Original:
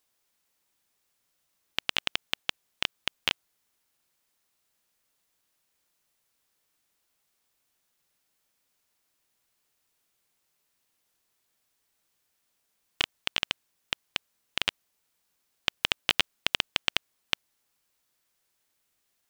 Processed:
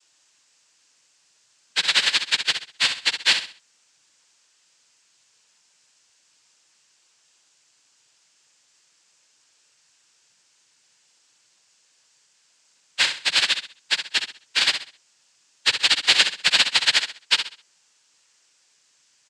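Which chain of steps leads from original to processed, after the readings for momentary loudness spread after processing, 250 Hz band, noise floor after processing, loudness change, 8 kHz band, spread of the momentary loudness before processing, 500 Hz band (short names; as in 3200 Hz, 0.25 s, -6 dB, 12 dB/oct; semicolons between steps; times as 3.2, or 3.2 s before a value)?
9 LU, +1.5 dB, -64 dBFS, +10.5 dB, +15.0 dB, 9 LU, +4.0 dB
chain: frequency quantiser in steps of 2 st; in parallel at 0 dB: compressor, threshold -37 dBFS, peak gain reduction 20 dB; on the sum: noise vocoder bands 8; feedback echo 65 ms, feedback 32%, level -8.5 dB; gain +3.5 dB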